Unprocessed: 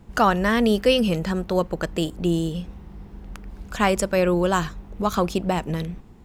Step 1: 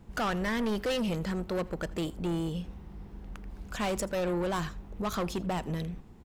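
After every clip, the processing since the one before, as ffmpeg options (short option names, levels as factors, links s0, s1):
-af "asoftclip=type=tanh:threshold=0.0794,aecho=1:1:82:0.075,volume=0.596"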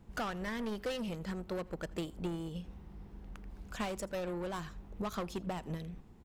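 -af "acompressor=threshold=0.02:ratio=20,agate=range=0.398:threshold=0.0158:ratio=16:detection=peak,volume=1.41"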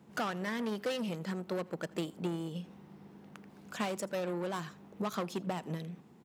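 -af "highpass=f=140:w=0.5412,highpass=f=140:w=1.3066,volume=1.33"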